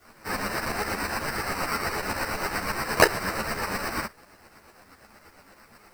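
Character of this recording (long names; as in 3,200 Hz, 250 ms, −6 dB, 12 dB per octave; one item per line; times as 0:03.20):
aliases and images of a low sample rate 3,400 Hz, jitter 0%
tremolo saw up 8.5 Hz, depth 70%
a quantiser's noise floor 12 bits, dither triangular
a shimmering, thickened sound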